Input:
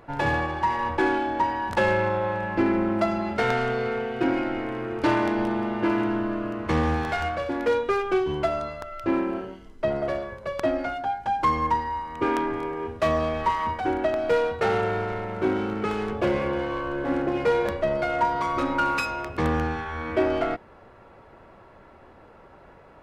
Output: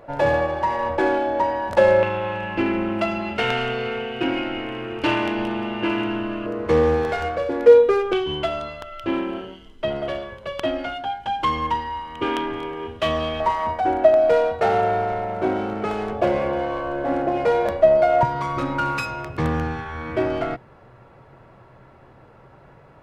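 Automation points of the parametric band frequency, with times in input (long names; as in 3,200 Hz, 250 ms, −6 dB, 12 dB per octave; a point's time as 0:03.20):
parametric band +13.5 dB 0.42 octaves
580 Hz
from 0:02.03 2,800 Hz
from 0:06.46 470 Hz
from 0:08.13 3,100 Hz
from 0:13.40 670 Hz
from 0:18.23 130 Hz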